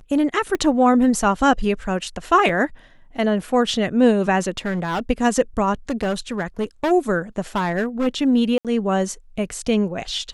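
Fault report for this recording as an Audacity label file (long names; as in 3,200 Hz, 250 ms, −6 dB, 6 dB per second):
0.550000	0.550000	click −11 dBFS
2.490000	2.490000	drop-out 3.1 ms
4.570000	5.000000	clipping −19.5 dBFS
5.890000	6.920000	clipping −17.5 dBFS
7.560000	8.080000	clipping −17 dBFS
8.580000	8.650000	drop-out 67 ms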